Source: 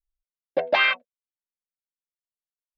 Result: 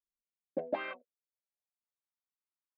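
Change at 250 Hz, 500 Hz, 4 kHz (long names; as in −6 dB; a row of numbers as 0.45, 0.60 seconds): −2.0, −11.5, −27.0 decibels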